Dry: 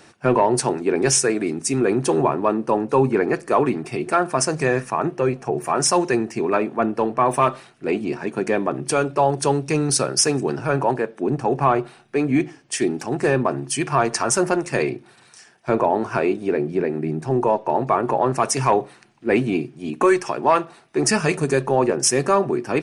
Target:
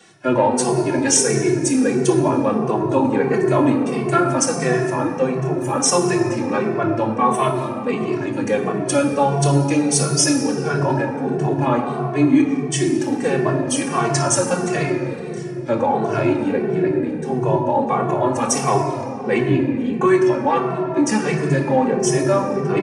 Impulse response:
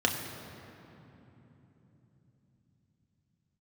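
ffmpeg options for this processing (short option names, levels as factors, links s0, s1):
-filter_complex "[0:a]asetnsamples=n=441:p=0,asendcmd='19.38 highshelf g -2',highshelf=f=4400:g=8.5[s0];[1:a]atrim=start_sample=2205,asetrate=48510,aresample=44100[s1];[s0][s1]afir=irnorm=-1:irlink=0,asplit=2[s2][s3];[s3]adelay=2.2,afreqshift=-1.5[s4];[s2][s4]amix=inputs=2:normalize=1,volume=0.447"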